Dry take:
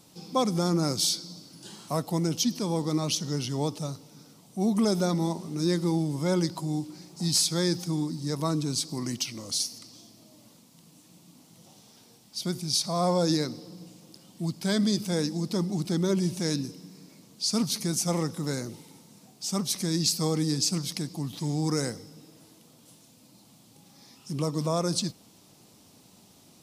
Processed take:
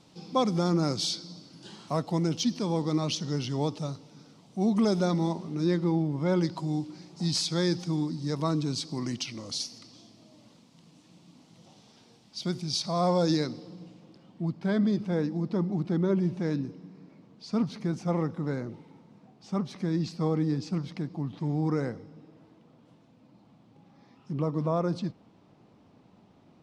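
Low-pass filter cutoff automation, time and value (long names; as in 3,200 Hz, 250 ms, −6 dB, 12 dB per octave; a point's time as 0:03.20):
0:05.25 4,600 Hz
0:06.11 2,100 Hz
0:06.60 4,600 Hz
0:13.44 4,600 Hz
0:14.48 1,800 Hz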